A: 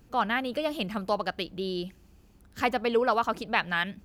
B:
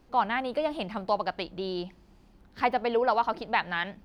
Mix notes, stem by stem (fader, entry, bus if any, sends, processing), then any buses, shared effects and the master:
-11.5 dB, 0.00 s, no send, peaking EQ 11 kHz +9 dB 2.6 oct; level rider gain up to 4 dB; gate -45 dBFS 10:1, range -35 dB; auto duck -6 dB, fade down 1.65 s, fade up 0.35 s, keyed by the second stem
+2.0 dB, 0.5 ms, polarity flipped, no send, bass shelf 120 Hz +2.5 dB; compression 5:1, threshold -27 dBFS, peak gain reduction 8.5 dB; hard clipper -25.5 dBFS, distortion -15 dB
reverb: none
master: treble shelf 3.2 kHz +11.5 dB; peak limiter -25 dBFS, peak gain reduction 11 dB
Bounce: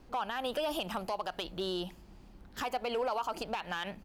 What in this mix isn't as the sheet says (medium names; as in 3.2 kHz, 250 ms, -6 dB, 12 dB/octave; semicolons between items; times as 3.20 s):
stem A -11.5 dB -> -5.0 dB; master: missing treble shelf 3.2 kHz +11.5 dB